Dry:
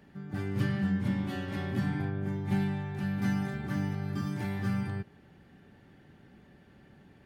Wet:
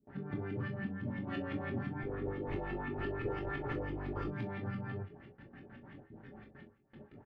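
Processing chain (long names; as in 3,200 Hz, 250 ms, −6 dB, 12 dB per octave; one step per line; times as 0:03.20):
0:02.03–0:04.28: lower of the sound and its delayed copy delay 2.3 ms
noise gate with hold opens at −47 dBFS
downward compressor, threshold −39 dBFS, peak gain reduction 14.5 dB
auto-filter low-pass saw up 5.9 Hz 240–3,300 Hz
double-tracking delay 22 ms −7 dB
convolution reverb, pre-delay 3 ms, DRR 2.5 dB
level +1 dB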